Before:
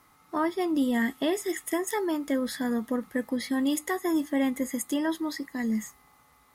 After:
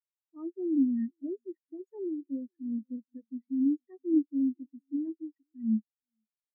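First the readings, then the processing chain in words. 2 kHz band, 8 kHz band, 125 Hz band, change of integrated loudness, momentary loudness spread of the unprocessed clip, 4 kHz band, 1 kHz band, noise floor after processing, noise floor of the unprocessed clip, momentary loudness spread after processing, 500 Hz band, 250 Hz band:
below −35 dB, below −40 dB, can't be measured, −3.5 dB, 5 LU, below −40 dB, below −30 dB, below −85 dBFS, −61 dBFS, 16 LU, −10.0 dB, −2.5 dB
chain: leveller curve on the samples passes 2
single-tap delay 471 ms −14 dB
every bin expanded away from the loudest bin 4 to 1
level −2 dB

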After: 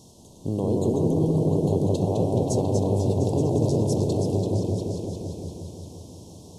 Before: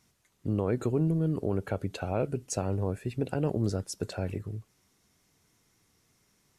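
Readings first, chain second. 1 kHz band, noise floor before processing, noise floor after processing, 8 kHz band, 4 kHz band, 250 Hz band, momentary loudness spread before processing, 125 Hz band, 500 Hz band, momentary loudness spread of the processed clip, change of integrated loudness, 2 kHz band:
+6.0 dB, −70 dBFS, −49 dBFS, +4.0 dB, +5.0 dB, +8.0 dB, 8 LU, +8.0 dB, +8.5 dB, 15 LU, +7.5 dB, below −15 dB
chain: compressor on every frequency bin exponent 0.6
elliptic band-stop filter 970–3,200 Hz, stop band 40 dB
delay with pitch and tempo change per echo 92 ms, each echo −1 semitone, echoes 3, each echo −6 dB
echo whose low-pass opens from repeat to repeat 175 ms, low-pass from 750 Hz, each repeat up 1 octave, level 0 dB

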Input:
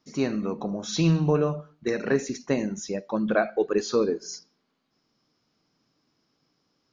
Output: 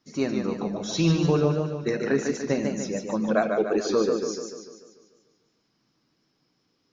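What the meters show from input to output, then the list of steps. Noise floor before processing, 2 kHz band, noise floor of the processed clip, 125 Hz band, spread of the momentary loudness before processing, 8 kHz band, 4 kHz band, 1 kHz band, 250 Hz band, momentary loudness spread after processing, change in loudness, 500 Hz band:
−74 dBFS, 0.0 dB, −72 dBFS, +0.5 dB, 10 LU, can't be measured, +1.5 dB, +1.0 dB, +1.5 dB, 8 LU, +1.0 dB, +1.0 dB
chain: spectral magnitudes quantised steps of 15 dB
feedback echo with a swinging delay time 147 ms, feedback 53%, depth 79 cents, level −5 dB

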